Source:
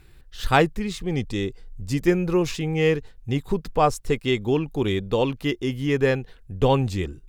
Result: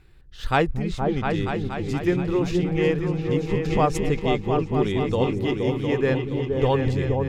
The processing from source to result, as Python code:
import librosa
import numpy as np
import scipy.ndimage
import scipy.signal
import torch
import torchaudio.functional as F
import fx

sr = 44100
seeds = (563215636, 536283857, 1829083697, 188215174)

y = fx.high_shelf(x, sr, hz=6900.0, db=-11.0)
y = fx.echo_opening(y, sr, ms=236, hz=200, octaves=2, feedback_pct=70, wet_db=0)
y = fx.pre_swell(y, sr, db_per_s=52.0, at=(3.64, 4.18), fade=0.02)
y = y * 10.0 ** (-2.5 / 20.0)